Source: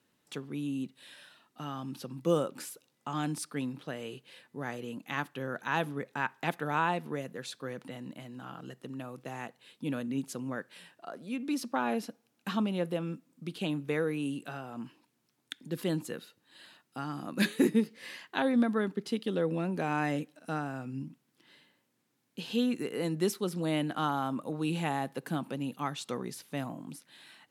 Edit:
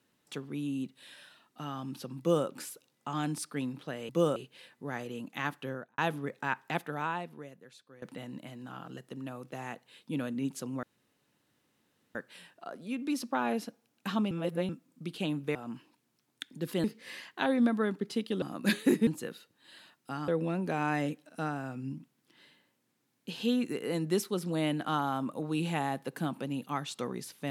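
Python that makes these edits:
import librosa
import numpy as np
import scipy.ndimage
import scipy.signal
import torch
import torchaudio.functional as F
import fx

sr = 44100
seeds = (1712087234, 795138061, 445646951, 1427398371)

y = fx.studio_fade_out(x, sr, start_s=5.38, length_s=0.33)
y = fx.edit(y, sr, fx.duplicate(start_s=2.19, length_s=0.27, to_s=4.09),
    fx.fade_out_to(start_s=6.4, length_s=1.35, curve='qua', floor_db=-16.5),
    fx.insert_room_tone(at_s=10.56, length_s=1.32),
    fx.reverse_span(start_s=12.72, length_s=0.38),
    fx.cut(start_s=13.96, length_s=0.69),
    fx.swap(start_s=15.94, length_s=1.21, other_s=17.8, other_length_s=1.58), tone=tone)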